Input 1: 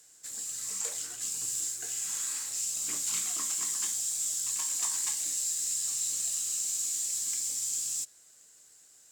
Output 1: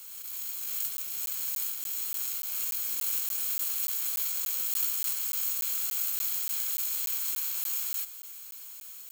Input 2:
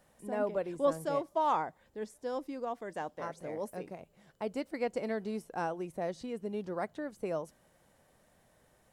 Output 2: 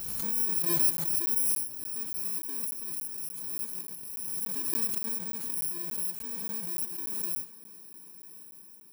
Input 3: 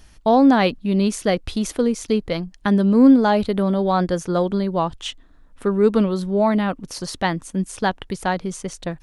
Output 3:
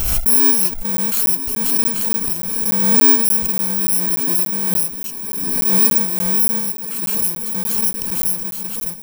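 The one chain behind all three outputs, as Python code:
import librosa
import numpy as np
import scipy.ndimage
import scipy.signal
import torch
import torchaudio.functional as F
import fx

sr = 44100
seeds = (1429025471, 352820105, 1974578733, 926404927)

p1 = fx.bit_reversed(x, sr, seeds[0], block=64)
p2 = fx.high_shelf(p1, sr, hz=7900.0, db=11.5)
p3 = p2 + fx.echo_diffused(p2, sr, ms=1115, feedback_pct=51, wet_db=-14, dry=0)
p4 = fx.buffer_crackle(p3, sr, first_s=0.97, period_s=0.29, block=512, kind='zero')
p5 = fx.pre_swell(p4, sr, db_per_s=26.0)
y = p5 * 10.0 ** (-8.0 / 20.0)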